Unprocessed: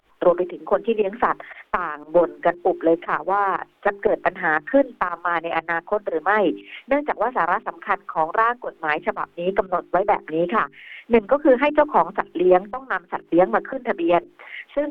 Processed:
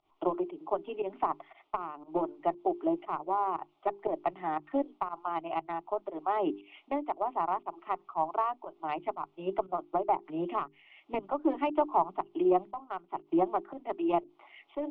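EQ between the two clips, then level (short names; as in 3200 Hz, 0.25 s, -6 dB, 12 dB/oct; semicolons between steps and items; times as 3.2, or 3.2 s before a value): air absorption 170 m; low shelf 95 Hz -7 dB; fixed phaser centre 330 Hz, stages 8; -7.0 dB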